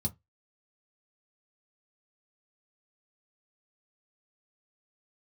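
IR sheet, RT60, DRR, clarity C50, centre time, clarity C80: 0.15 s, 1.0 dB, 24.0 dB, 6 ms, 33.0 dB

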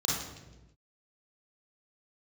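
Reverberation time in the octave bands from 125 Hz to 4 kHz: 1.4 s, 1.3 s, 1.2 s, 0.90 s, 0.90 s, 0.85 s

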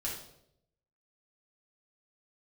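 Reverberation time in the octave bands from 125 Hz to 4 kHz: 1.0 s, 0.85 s, 0.85 s, 0.65 s, 0.55 s, 0.60 s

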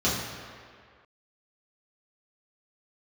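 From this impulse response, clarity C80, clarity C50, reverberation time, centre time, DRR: 3.5 dB, 1.0 dB, 2.0 s, 88 ms, -9.0 dB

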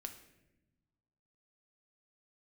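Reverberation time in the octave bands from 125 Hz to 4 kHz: 1.9 s, 1.7 s, 1.2 s, 0.75 s, 0.90 s, 0.70 s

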